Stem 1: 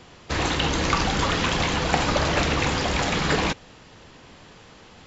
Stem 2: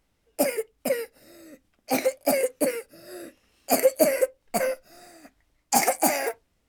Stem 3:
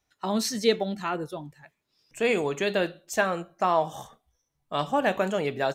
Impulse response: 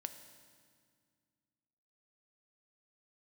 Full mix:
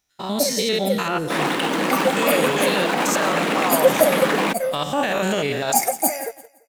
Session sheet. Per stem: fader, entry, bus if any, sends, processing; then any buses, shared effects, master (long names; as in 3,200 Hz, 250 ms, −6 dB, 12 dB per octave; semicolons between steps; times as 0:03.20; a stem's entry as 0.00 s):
−4.0 dB, 1.00 s, bus A, no send, no echo send, running median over 9 samples; Butterworth high-pass 180 Hz 48 dB per octave
−4.0 dB, 0.00 s, no bus, no send, echo send −15 dB, high-shelf EQ 5,800 Hz +10 dB; every bin expanded away from the loudest bin 1.5 to 1
0.0 dB, 0.00 s, bus A, no send, echo send −13.5 dB, spectrum averaged block by block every 100 ms; high-shelf EQ 2,300 Hz +11 dB; brickwall limiter −21.5 dBFS, peak gain reduction 10.5 dB
bus A: 0.0 dB, automatic gain control gain up to 5.5 dB; brickwall limiter −14 dBFS, peak gain reduction 8 dB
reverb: not used
echo: repeating echo 170 ms, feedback 36%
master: leveller curve on the samples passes 1